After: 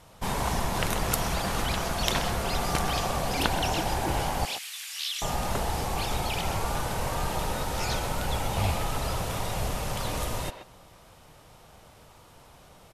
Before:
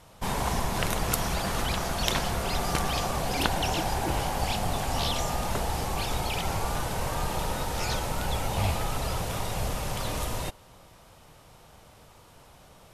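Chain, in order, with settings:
0:04.45–0:05.22: inverse Chebyshev high-pass filter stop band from 340 Hz, stop band 80 dB
far-end echo of a speakerphone 130 ms, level −8 dB

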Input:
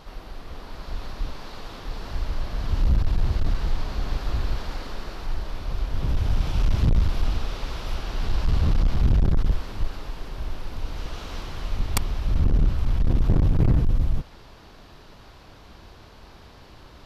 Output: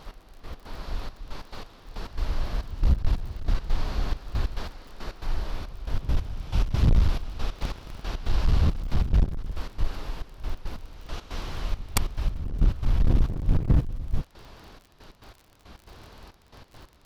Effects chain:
0:07.57–0:08.05: sub-harmonics by changed cycles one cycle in 3, inverted
gate pattern "x...x.xxxx..x." 138 BPM −12 dB
surface crackle 43 per second −40 dBFS

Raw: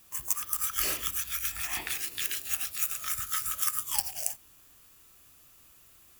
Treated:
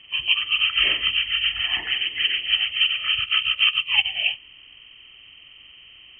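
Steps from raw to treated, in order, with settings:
hearing-aid frequency compression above 1,700 Hz 4 to 1
0:03.21–0:04.05: transient designer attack +1 dB, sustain −8 dB
level +3 dB

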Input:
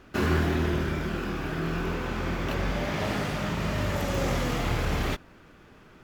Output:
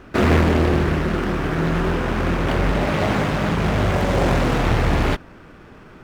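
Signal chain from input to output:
in parallel at −7 dB: sample-rate reduction 6,900 Hz
on the sum: high-shelf EQ 6,300 Hz −8 dB
highs frequency-modulated by the lows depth 0.97 ms
level +6.5 dB

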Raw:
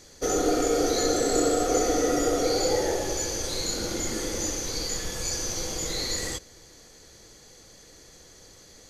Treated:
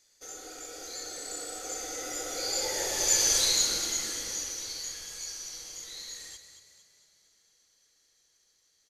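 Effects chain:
source passing by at 0:03.29, 10 m/s, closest 2.8 metres
tilt shelving filter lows −9 dB, about 940 Hz
on a send: echo with shifted repeats 227 ms, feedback 51%, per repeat +30 Hz, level −10 dB

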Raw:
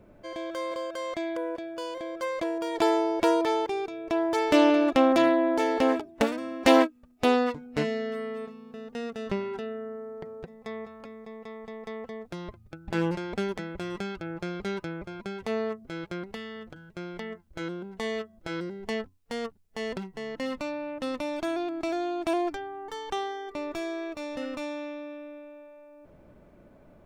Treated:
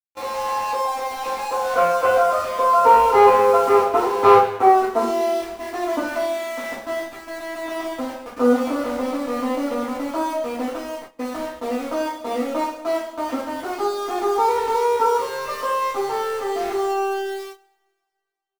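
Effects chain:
gliding playback speed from 161% → 130%
Chebyshev band-pass filter 230–1,400 Hz, order 4
comb filter 7.5 ms, depth 42%
leveller curve on the samples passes 2
in parallel at −1.5 dB: downward compressor, threshold −30 dBFS, peak gain reduction 18 dB
on the sum: centre clipping without the shift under −30.5 dBFS
coupled-rooms reverb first 0.68 s, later 2.3 s, DRR −10 dB
noise gate −28 dBFS, range −14 dB
level −9 dB

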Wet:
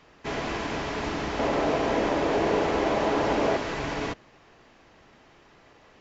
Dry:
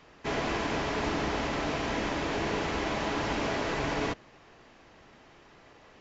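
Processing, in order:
0:01.39–0:03.57: parametric band 520 Hz +10 dB 2 octaves

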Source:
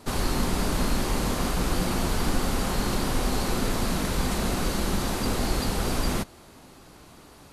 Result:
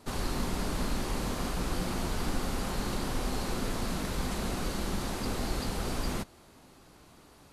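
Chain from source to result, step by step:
highs frequency-modulated by the lows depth 0.14 ms
level −6.5 dB

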